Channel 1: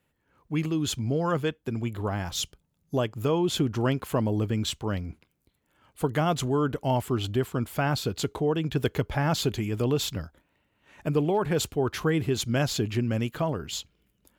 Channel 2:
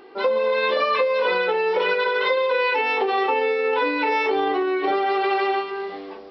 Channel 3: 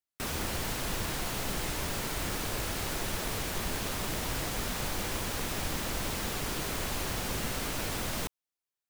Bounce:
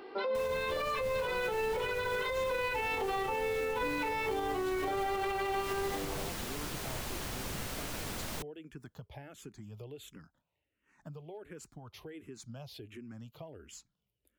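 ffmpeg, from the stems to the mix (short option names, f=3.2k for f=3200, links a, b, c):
-filter_complex "[0:a]acompressor=threshold=-29dB:ratio=6,asplit=2[a][b];[b]afreqshift=-1.4[c];[a][c]amix=inputs=2:normalize=1,volume=-12dB[d];[1:a]volume=-2.5dB[e];[2:a]adelay=150,volume=-5.5dB[f];[d][e][f]amix=inputs=3:normalize=0,acrossover=split=150[g][h];[h]acompressor=threshold=-26dB:ratio=4[i];[g][i]amix=inputs=2:normalize=0,alimiter=level_in=1.5dB:limit=-24dB:level=0:latency=1:release=111,volume=-1.5dB"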